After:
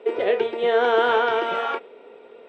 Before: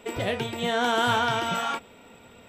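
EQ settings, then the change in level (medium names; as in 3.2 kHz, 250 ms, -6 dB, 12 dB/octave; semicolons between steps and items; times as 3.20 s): distance through air 250 m; dynamic bell 1.9 kHz, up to +4 dB, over -39 dBFS, Q 0.81; resonant high-pass 420 Hz, resonance Q 4.9; 0.0 dB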